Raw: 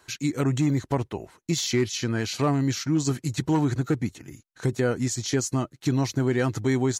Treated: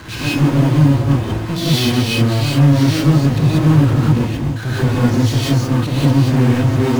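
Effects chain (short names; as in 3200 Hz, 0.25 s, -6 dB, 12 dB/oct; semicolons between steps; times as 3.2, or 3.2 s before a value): LPF 4300 Hz 24 dB/oct; resonant low shelf 320 Hz +9.5 dB, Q 1.5; resonator 110 Hz, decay 0.28 s, harmonics odd, mix 60%; power-law curve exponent 0.35; non-linear reverb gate 0.21 s rising, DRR -7.5 dB; gain -5.5 dB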